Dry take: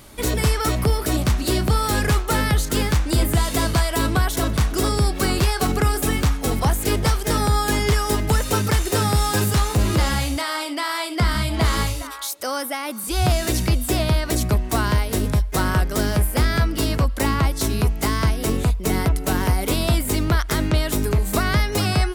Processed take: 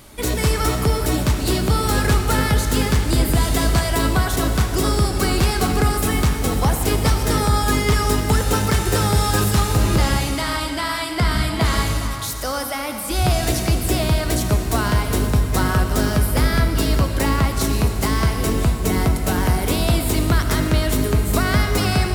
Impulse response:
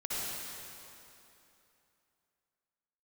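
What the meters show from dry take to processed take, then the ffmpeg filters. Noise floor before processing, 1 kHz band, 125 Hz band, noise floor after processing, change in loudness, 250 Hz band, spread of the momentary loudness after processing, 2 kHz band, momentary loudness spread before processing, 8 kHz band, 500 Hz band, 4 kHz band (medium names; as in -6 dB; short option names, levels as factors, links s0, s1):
-29 dBFS, +1.5 dB, +2.0 dB, -26 dBFS, +1.5 dB, +2.0 dB, 3 LU, +1.5 dB, 2 LU, +1.5 dB, +1.5 dB, +1.5 dB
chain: -filter_complex "[0:a]asplit=2[s0][s1];[1:a]atrim=start_sample=2205[s2];[s1][s2]afir=irnorm=-1:irlink=0,volume=0.398[s3];[s0][s3]amix=inputs=2:normalize=0,volume=0.841"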